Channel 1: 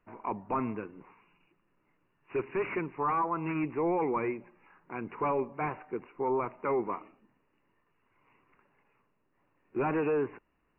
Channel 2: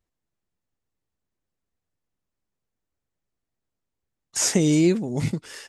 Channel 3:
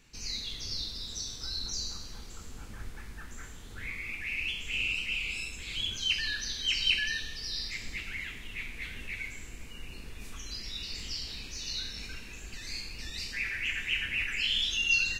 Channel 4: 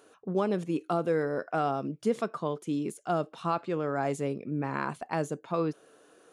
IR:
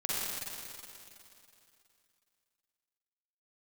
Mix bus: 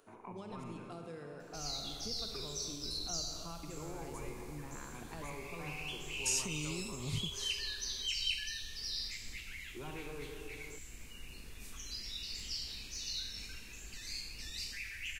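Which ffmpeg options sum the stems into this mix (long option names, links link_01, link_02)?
-filter_complex "[0:a]volume=-9.5dB,asplit=3[link_01][link_02][link_03];[link_01]atrim=end=2.49,asetpts=PTS-STARTPTS,afade=type=out:start_time=2.486:duration=0.004:curve=hsin[link_04];[link_02]atrim=start=2.49:end=3.63,asetpts=PTS-STARTPTS,volume=0[link_05];[link_03]atrim=start=3.63,asetpts=PTS-STARTPTS,afade=type=in:duration=0.004:curve=hsin[link_06];[link_04][link_05][link_06]concat=n=3:v=0:a=1,asplit=2[link_07][link_08];[link_08]volume=-4.5dB[link_09];[1:a]alimiter=limit=-16.5dB:level=0:latency=1:release=262,adelay=1900,volume=-5.5dB[link_10];[2:a]highshelf=frequency=5300:gain=8.5,adelay=1400,volume=-6.5dB[link_11];[3:a]acompressor=mode=upward:threshold=-60dB:ratio=2.5,volume=-11.5dB,asplit=2[link_12][link_13];[link_13]volume=-8dB[link_14];[4:a]atrim=start_sample=2205[link_15];[link_09][link_14]amix=inputs=2:normalize=0[link_16];[link_16][link_15]afir=irnorm=-1:irlink=0[link_17];[link_07][link_10][link_11][link_12][link_17]amix=inputs=5:normalize=0,acrossover=split=130|3000[link_18][link_19][link_20];[link_19]acompressor=threshold=-52dB:ratio=2.5[link_21];[link_18][link_21][link_20]amix=inputs=3:normalize=0"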